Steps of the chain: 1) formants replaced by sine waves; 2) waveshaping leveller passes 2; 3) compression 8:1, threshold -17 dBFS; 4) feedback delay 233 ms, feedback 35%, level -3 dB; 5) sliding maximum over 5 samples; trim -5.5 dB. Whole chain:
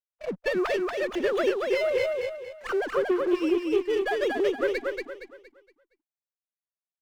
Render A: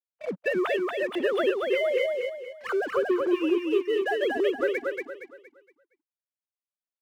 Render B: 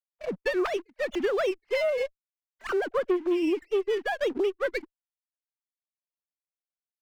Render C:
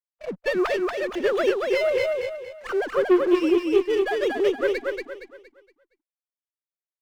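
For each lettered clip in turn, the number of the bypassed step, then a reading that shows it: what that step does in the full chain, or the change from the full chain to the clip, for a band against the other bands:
5, distortion -17 dB; 4, momentary loudness spread change -4 LU; 3, mean gain reduction 2.5 dB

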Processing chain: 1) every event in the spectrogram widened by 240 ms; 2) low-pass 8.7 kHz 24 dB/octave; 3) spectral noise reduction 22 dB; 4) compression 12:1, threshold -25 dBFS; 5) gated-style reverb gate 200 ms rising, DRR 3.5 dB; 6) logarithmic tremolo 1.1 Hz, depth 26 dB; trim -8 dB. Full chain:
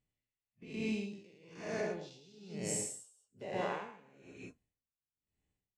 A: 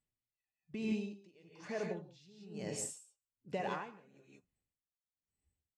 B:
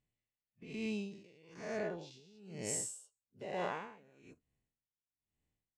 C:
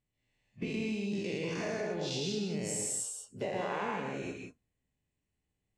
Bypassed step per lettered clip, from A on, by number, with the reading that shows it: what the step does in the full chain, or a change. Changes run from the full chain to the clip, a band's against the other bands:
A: 1, 8 kHz band -3.0 dB; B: 5, loudness change -1.5 LU; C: 6, momentary loudness spread change -12 LU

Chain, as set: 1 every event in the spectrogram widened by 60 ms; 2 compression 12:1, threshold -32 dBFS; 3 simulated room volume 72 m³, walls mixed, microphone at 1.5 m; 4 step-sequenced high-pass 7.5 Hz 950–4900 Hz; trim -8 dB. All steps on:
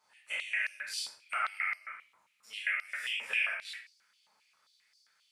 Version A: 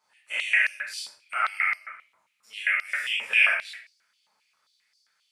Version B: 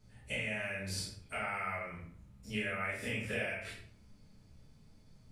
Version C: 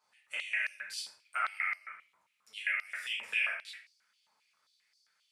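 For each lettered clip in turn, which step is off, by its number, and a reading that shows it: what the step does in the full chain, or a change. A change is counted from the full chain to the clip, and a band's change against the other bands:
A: 2, mean gain reduction 4.0 dB; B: 4, 500 Hz band +18.5 dB; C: 1, 8 kHz band -2.0 dB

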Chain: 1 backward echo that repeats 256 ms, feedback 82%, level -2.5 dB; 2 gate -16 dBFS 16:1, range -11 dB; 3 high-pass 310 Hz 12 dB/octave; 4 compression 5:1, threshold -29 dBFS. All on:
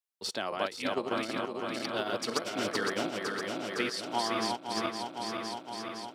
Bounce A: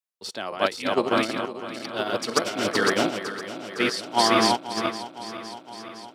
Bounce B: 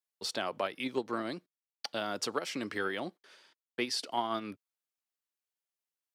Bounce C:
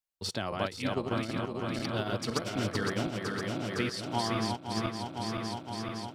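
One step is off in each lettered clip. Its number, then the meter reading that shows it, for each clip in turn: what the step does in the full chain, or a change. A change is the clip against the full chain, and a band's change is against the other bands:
4, crest factor change +2.0 dB; 1, momentary loudness spread change +5 LU; 3, 125 Hz band +14.5 dB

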